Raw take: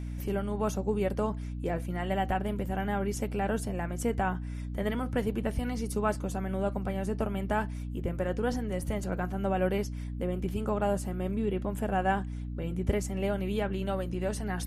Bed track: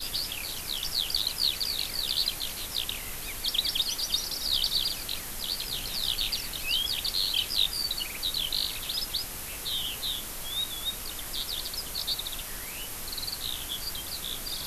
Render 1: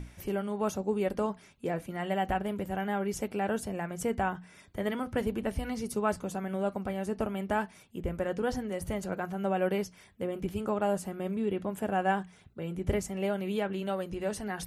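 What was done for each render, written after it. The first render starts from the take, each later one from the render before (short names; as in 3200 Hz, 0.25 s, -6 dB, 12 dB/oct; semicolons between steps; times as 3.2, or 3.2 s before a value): notches 60/120/180/240/300 Hz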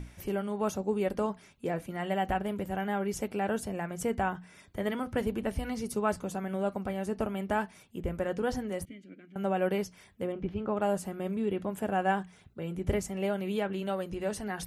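8.85–9.36 vowel filter i; 10.32–10.77 air absorption 270 m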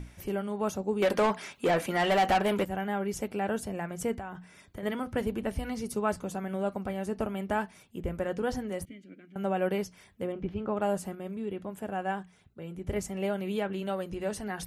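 1.02–2.65 overdrive pedal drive 22 dB, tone 6200 Hz, clips at -16 dBFS; 4.15–4.83 compressor, threshold -35 dBFS; 11.15–12.96 gain -4.5 dB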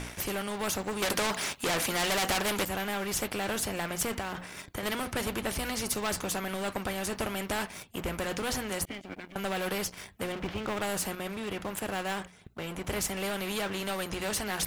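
sample leveller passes 2; spectral compressor 2:1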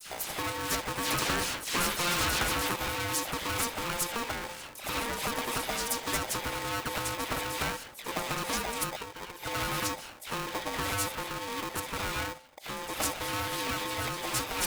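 dispersion lows, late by 0.115 s, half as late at 2100 Hz; polarity switched at an audio rate 700 Hz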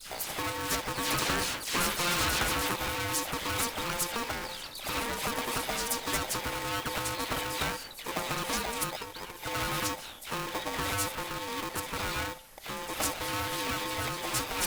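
add bed track -17.5 dB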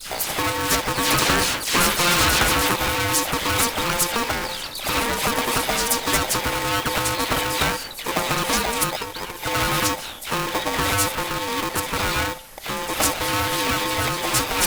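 gain +10.5 dB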